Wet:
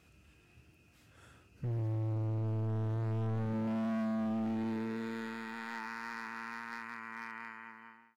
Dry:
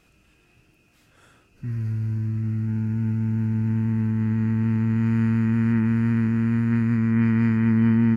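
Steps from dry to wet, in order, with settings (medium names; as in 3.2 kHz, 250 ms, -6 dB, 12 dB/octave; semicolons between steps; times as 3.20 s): fade out at the end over 1.75 s; high-pass sweep 72 Hz -> 950 Hz, 2.63–5.89 s; overload inside the chain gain 28 dB; trim -5 dB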